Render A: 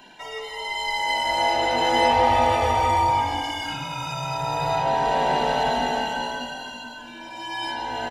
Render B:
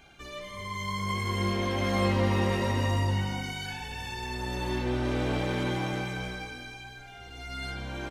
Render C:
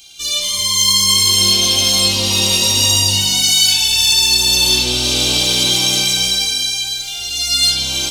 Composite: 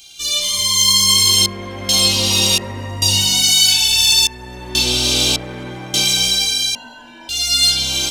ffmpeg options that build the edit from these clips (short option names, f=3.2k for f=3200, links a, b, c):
-filter_complex "[1:a]asplit=4[a][b][c][d];[2:a]asplit=6[e][f][g][h][i][j];[e]atrim=end=1.462[k];[a]atrim=start=1.458:end=1.892[l];[f]atrim=start=1.888:end=2.582[m];[b]atrim=start=2.578:end=3.022[n];[g]atrim=start=3.018:end=4.272[o];[c]atrim=start=4.268:end=4.752[p];[h]atrim=start=4.748:end=5.362[q];[d]atrim=start=5.358:end=5.942[r];[i]atrim=start=5.938:end=6.752[s];[0:a]atrim=start=6.748:end=7.292[t];[j]atrim=start=7.288[u];[k][l]acrossfade=d=0.004:c1=hsin:c2=hsin[v];[v][m]acrossfade=d=0.004:c1=hsin:c2=hsin[w];[w][n]acrossfade=d=0.004:c1=hsin:c2=hsin[x];[x][o]acrossfade=d=0.004:c1=hsin:c2=hsin[y];[y][p]acrossfade=d=0.004:c1=hsin:c2=hsin[z];[z][q]acrossfade=d=0.004:c1=hsin:c2=hsin[aa];[aa][r]acrossfade=d=0.004:c1=hsin:c2=hsin[ab];[ab][s]acrossfade=d=0.004:c1=hsin:c2=hsin[ac];[ac][t]acrossfade=d=0.004:c1=hsin:c2=hsin[ad];[ad][u]acrossfade=d=0.004:c1=hsin:c2=hsin"